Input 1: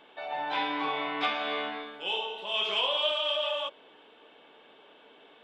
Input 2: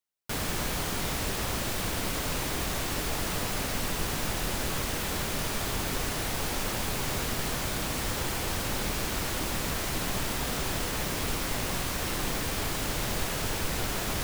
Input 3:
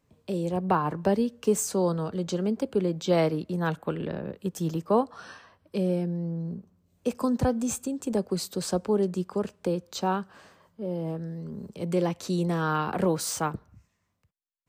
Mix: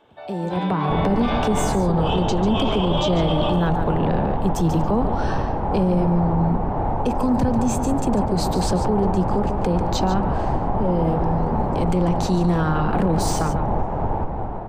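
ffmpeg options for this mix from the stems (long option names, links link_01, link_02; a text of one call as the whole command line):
ffmpeg -i stem1.wav -i stem2.wav -i stem3.wav -filter_complex "[0:a]equalizer=frequency=2400:width=0.9:gain=-9.5,volume=2.5dB[link_01];[1:a]lowshelf=frequency=390:gain=9,alimiter=limit=-16.5dB:level=0:latency=1:release=305,lowpass=frequency=840:width_type=q:width=4.9,adelay=600,volume=-4.5dB[link_02];[2:a]acrossover=split=230[link_03][link_04];[link_04]acompressor=threshold=-32dB:ratio=6[link_05];[link_03][link_05]amix=inputs=2:normalize=0,volume=2.5dB,asplit=3[link_06][link_07][link_08];[link_07]volume=-10.5dB[link_09];[link_08]apad=whole_len=239671[link_10];[link_01][link_10]sidechaincompress=threshold=-31dB:ratio=8:attack=46:release=101[link_11];[link_09]aecho=0:1:144:1[link_12];[link_11][link_02][link_06][link_12]amix=inputs=4:normalize=0,highshelf=frequency=6500:gain=-9,dynaudnorm=framelen=120:gausssize=11:maxgain=9dB,alimiter=limit=-11.5dB:level=0:latency=1:release=13" out.wav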